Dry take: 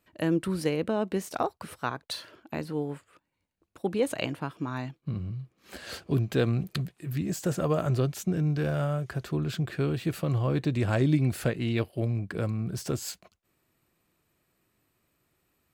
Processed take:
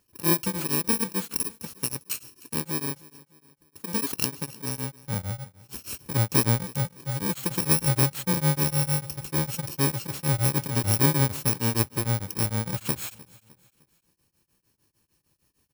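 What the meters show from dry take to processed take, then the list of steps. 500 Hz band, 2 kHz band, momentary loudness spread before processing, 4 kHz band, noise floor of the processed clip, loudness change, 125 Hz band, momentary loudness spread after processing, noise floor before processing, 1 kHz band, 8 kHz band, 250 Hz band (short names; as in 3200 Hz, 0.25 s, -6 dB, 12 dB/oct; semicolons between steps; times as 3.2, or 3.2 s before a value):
-3.5 dB, +3.0 dB, 11 LU, +7.0 dB, -73 dBFS, +4.0 dB, +1.5 dB, 11 LU, -76 dBFS, +2.5 dB, +14.0 dB, -0.5 dB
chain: FFT order left unsorted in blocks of 64 samples; on a send: feedback echo 0.305 s, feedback 45%, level -21 dB; on the sum: beating tremolo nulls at 6.6 Hz; gain +5.5 dB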